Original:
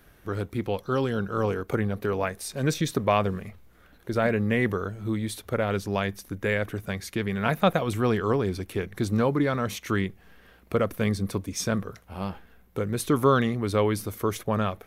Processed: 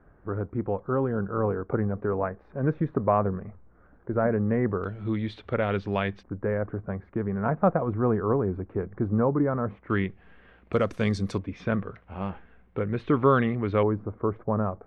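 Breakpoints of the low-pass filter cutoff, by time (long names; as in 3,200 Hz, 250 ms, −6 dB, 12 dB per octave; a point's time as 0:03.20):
low-pass filter 24 dB per octave
1,400 Hz
from 0:04.84 3,400 Hz
from 0:06.23 1,300 Hz
from 0:09.90 2,900 Hz
from 0:10.73 7,100 Hz
from 0:11.38 2,700 Hz
from 0:13.83 1,200 Hz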